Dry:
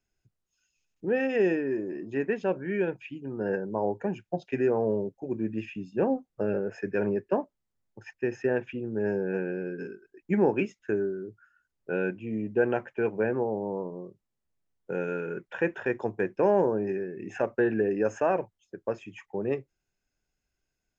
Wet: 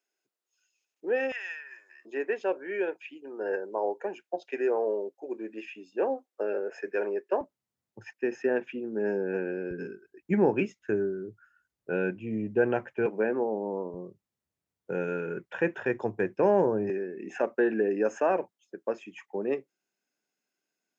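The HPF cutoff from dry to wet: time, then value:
HPF 24 dB/oct
340 Hz
from 1.32 s 1200 Hz
from 2.05 s 360 Hz
from 7.41 s 89 Hz
from 8.12 s 210 Hz
from 9.71 s 51 Hz
from 13.06 s 200 Hz
from 13.94 s 64 Hz
from 16.9 s 210 Hz

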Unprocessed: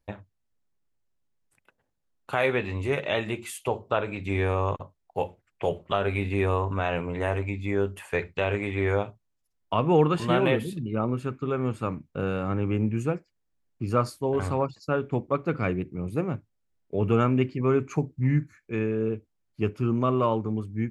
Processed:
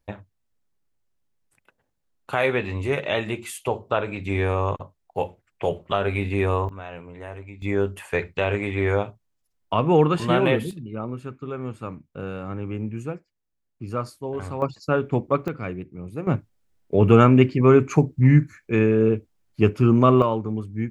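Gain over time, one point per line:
+2.5 dB
from 6.69 s -10 dB
from 7.62 s +3 dB
from 10.71 s -4 dB
from 14.62 s +4.5 dB
from 15.48 s -4 dB
from 16.27 s +8.5 dB
from 20.22 s +1.5 dB

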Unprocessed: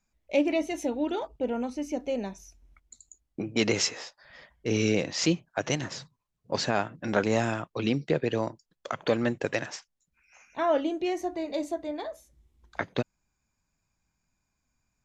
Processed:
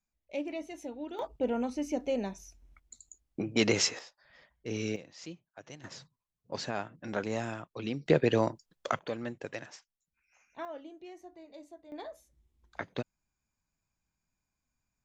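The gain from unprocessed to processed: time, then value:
-11.5 dB
from 1.19 s -1 dB
from 3.99 s -9 dB
from 4.96 s -20 dB
from 5.84 s -8.5 dB
from 8.06 s +2 dB
from 8.99 s -11 dB
from 10.65 s -19 dB
from 11.92 s -7 dB

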